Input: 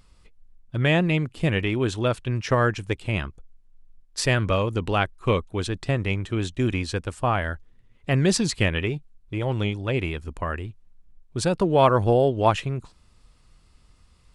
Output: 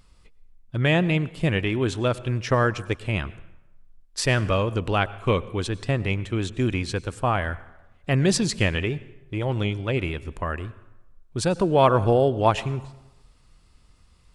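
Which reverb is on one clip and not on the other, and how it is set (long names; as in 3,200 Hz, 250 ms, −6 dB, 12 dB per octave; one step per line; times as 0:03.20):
dense smooth reverb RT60 0.98 s, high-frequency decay 0.7×, pre-delay 85 ms, DRR 18 dB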